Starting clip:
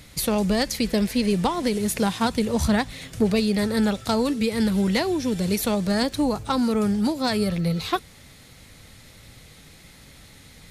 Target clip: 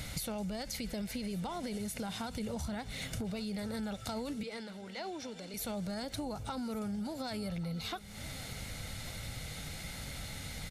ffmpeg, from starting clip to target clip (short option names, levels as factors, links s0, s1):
-filter_complex "[0:a]aecho=1:1:1.4:0.39,alimiter=limit=0.106:level=0:latency=1,acompressor=threshold=0.00891:ratio=8,asettb=1/sr,asplit=3[s0][s1][s2];[s0]atrim=end=4.434[s3];[s1]atrim=start=4.43:end=5.54,asetpts=PTS-STARTPTS,afade=t=in:d=0.004:c=qsin,afade=t=out:st=1.106:d=0.004:c=qsin,highpass=360,lowpass=6200[s4];[s2]atrim=start=5.536[s5];[s3][s4]acrossfade=d=0.004:c1=hsin:c2=qsin[s6];[s6][s5]acrossfade=d=0.004:c1=qsin:c2=hsin,aecho=1:1:1147:0.119,volume=1.68"